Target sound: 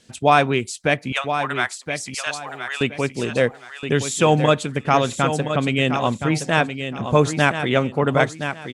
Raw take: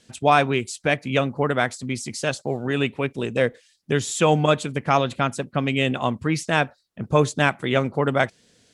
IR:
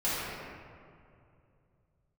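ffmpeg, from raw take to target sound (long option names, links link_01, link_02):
-filter_complex "[0:a]asettb=1/sr,asplit=3[link_01][link_02][link_03];[link_01]atrim=end=1.124[link_04];[link_02]atrim=start=1.12:end=2.81,asetpts=PTS-STARTPTS,afade=type=in:duration=0.004:curve=qsin,afade=type=out:start_time=1.686:duration=0.004:curve=qsin,highpass=frequency=840:width=0.5412,highpass=frequency=840:width=1.3066[link_05];[link_03]atrim=start=2.806[link_06];[link_04][link_05]acrossfade=duration=0.004:curve1=hsin:curve2=qsin[link_07];[link_07][link_06]acrossfade=duration=0.004:curve1=qsin:curve2=hsin,aecho=1:1:1020|2040|3060:0.376|0.0977|0.0254,volume=2dB"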